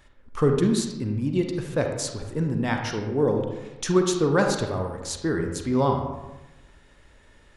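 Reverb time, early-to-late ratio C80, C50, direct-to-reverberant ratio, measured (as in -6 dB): 1.0 s, 7.0 dB, 4.5 dB, 3.0 dB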